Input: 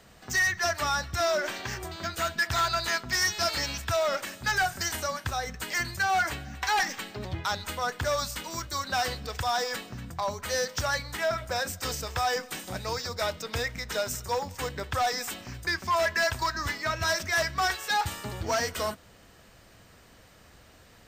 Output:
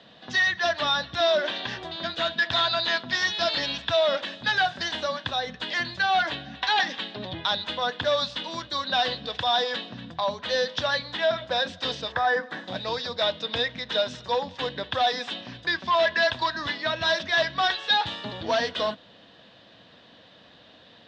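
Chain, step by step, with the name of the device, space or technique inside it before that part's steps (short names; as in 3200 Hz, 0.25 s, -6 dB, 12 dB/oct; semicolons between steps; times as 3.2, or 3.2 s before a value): kitchen radio (speaker cabinet 210–3800 Hz, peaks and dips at 390 Hz -8 dB, 830 Hz -4 dB, 1300 Hz -9 dB, 2200 Hz -9 dB, 3600 Hz +10 dB); 12.12–12.68 resonant high shelf 2200 Hz -7.5 dB, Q 3; gain +6.5 dB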